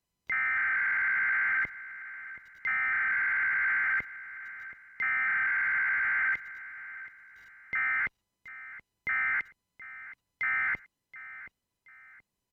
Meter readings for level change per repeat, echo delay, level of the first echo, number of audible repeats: -9.0 dB, 0.726 s, -16.0 dB, 2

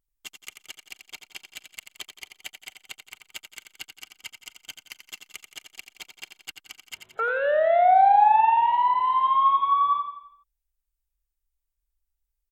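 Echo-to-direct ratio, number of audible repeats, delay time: -7.0 dB, 5, 86 ms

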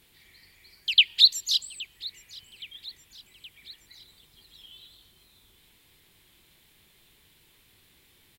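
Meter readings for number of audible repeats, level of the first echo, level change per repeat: 3, -20.5 dB, -4.5 dB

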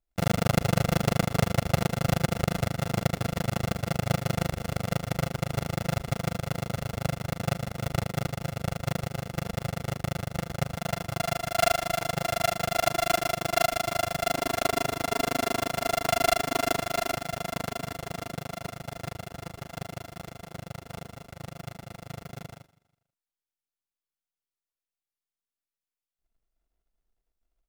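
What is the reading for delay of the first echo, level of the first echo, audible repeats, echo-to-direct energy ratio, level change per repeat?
0.162 s, -21.0 dB, 2, -20.5 dB, -8.5 dB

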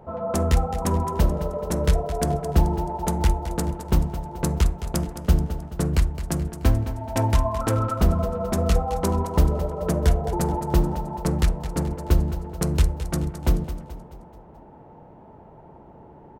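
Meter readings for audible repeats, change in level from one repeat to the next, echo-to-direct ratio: 4, -6.5 dB, -10.5 dB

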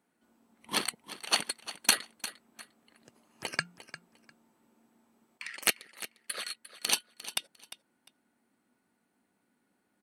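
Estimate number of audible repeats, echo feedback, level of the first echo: 2, 20%, -14.5 dB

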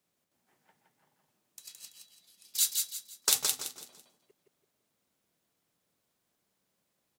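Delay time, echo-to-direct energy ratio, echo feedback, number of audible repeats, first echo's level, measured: 0.167 s, -3.5 dB, 33%, 4, -4.0 dB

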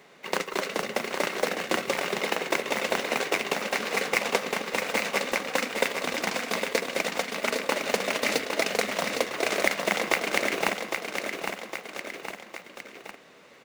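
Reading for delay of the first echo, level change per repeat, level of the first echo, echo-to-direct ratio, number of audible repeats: 0.809 s, -5.0 dB, -6.0 dB, -4.5 dB, 3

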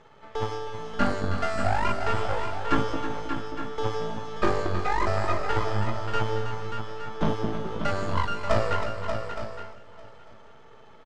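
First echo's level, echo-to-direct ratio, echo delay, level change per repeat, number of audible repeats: -9.5 dB, -4.5 dB, 0.319 s, no steady repeat, 7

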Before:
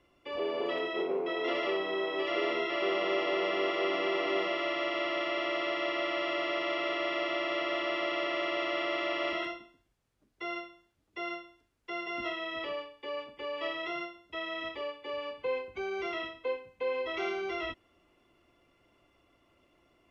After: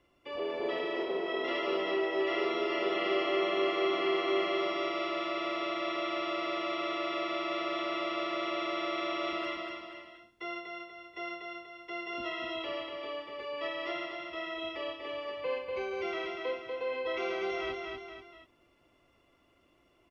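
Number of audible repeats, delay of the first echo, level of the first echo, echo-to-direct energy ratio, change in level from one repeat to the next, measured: 3, 0.241 s, -3.5 dB, -2.5 dB, -6.5 dB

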